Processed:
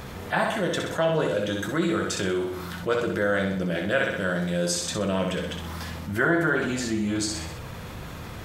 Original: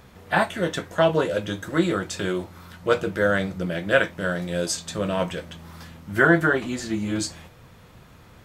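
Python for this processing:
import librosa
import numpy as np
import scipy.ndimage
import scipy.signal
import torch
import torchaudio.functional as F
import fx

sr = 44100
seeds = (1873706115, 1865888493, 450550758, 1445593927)

p1 = x + fx.echo_feedback(x, sr, ms=63, feedback_pct=44, wet_db=-6.5, dry=0)
p2 = fx.env_flatten(p1, sr, amount_pct=50)
y = p2 * librosa.db_to_amplitude(-7.0)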